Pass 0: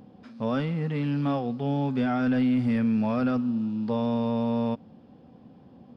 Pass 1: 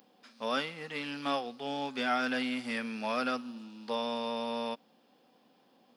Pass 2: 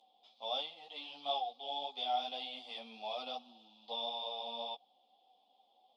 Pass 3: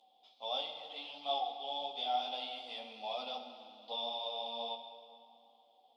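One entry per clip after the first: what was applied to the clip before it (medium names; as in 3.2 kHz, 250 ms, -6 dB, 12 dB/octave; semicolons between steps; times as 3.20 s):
high-pass 240 Hz 12 dB/octave; tilt EQ +4.5 dB/octave; upward expansion 1.5:1, over -42 dBFS; trim +1.5 dB
two resonant band-passes 1.6 kHz, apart 2.2 oct; three-phase chorus; trim +6.5 dB
plate-style reverb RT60 2.5 s, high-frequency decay 0.75×, DRR 6 dB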